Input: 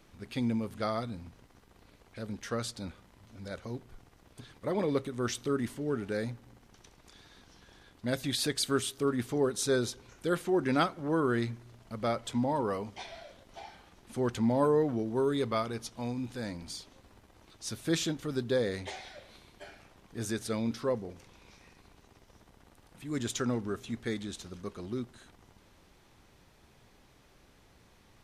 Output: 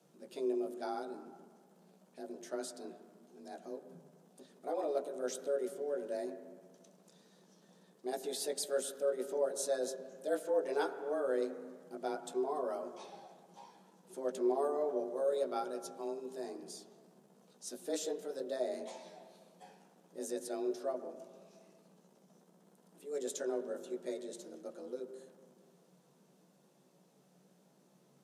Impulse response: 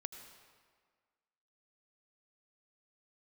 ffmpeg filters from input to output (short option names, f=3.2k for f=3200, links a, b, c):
-filter_complex "[0:a]equalizer=f=125:t=o:w=1:g=-8,equalizer=f=1k:t=o:w=1:g=-6,equalizer=f=2k:t=o:w=1:g=-11,equalizer=f=4k:t=o:w=1:g=-4,equalizer=f=8k:t=o:w=1:g=3,afreqshift=140,asplit=2[a][b];[1:a]atrim=start_sample=2205,lowpass=2k,adelay=16[c];[b][c]afir=irnorm=-1:irlink=0,volume=2.5dB[d];[a][d]amix=inputs=2:normalize=0,volume=-6dB"